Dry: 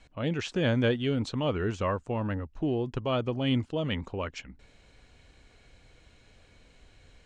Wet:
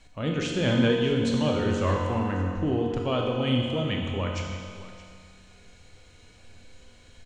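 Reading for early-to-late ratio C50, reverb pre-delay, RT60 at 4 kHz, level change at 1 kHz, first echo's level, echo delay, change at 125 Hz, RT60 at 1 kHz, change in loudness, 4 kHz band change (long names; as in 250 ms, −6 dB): 0.5 dB, 20 ms, 2.1 s, +4.0 dB, −16.5 dB, 619 ms, +3.5 dB, 2.3 s, +3.5 dB, +5.0 dB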